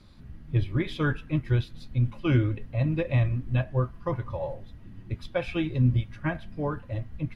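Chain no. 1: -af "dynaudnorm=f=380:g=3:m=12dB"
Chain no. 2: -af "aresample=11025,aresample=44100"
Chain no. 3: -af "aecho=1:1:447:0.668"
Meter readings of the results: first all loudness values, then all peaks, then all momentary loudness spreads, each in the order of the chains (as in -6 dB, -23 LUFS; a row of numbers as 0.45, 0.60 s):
-19.0, -28.5, -27.0 LUFS; -2.0, -11.0, -10.0 dBFS; 9, 12, 9 LU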